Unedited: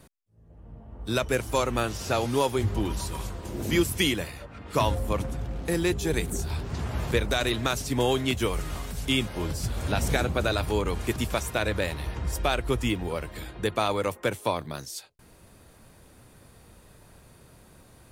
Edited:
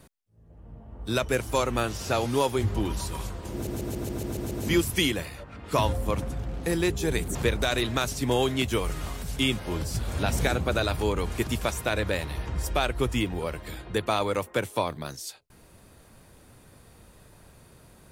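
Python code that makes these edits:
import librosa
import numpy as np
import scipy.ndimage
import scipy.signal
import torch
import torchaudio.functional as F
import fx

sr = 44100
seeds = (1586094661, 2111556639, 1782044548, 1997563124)

y = fx.edit(x, sr, fx.stutter(start_s=3.53, slice_s=0.14, count=8),
    fx.cut(start_s=6.37, length_s=0.67), tone=tone)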